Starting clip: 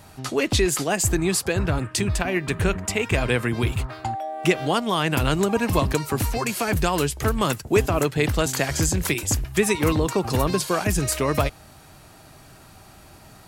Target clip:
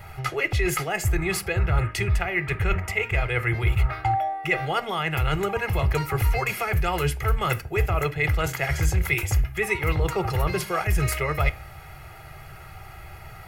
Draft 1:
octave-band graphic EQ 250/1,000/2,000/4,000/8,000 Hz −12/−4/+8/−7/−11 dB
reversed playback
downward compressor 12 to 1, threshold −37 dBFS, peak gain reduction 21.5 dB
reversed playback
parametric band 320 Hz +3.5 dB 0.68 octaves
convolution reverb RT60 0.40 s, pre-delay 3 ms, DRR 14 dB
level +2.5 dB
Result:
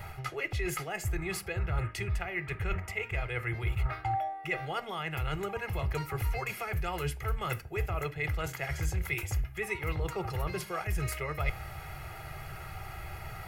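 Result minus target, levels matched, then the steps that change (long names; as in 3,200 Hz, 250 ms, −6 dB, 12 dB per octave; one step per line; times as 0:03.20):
downward compressor: peak gain reduction +9.5 dB
change: downward compressor 12 to 1, threshold −26.5 dBFS, peak gain reduction 12 dB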